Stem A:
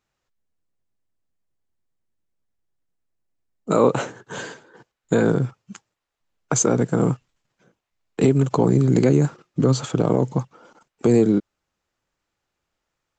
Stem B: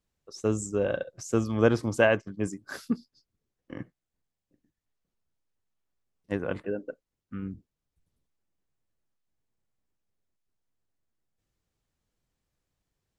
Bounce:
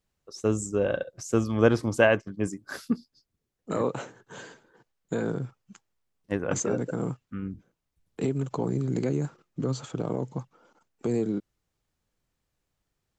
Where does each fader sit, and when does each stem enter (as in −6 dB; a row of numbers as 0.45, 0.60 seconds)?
−11.0, +1.5 decibels; 0.00, 0.00 seconds